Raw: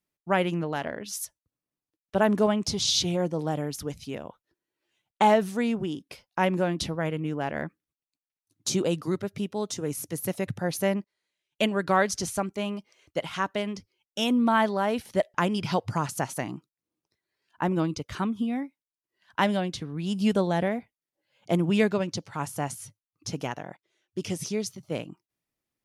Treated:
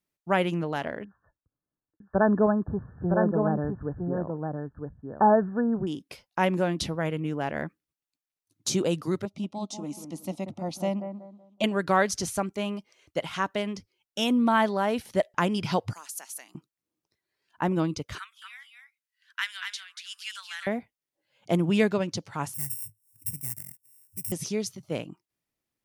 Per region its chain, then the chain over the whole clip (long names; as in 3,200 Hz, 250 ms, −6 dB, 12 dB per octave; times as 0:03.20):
0:01.04–0:05.87: linear-phase brick-wall low-pass 1,800 Hz + low-shelf EQ 100 Hz +6.5 dB + single-tap delay 961 ms −4.5 dB
0:09.25–0:11.64: high-frequency loss of the air 69 metres + phaser with its sweep stopped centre 440 Hz, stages 6 + bucket-brigade delay 187 ms, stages 2,048, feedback 30%, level −8.5 dB
0:15.93–0:16.55: elliptic high-pass filter 180 Hz + first difference
0:18.18–0:20.67: Butterworth high-pass 1,400 Hz + single-tap delay 236 ms −6 dB
0:22.54–0:24.32: samples sorted by size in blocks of 16 samples + drawn EQ curve 110 Hz 0 dB, 440 Hz −27 dB, 990 Hz −27 dB, 2,100 Hz −12 dB, 3,100 Hz −29 dB, 7,400 Hz +4 dB, 12,000 Hz +13 dB + upward compression, threshold −41 dBFS
whole clip: no processing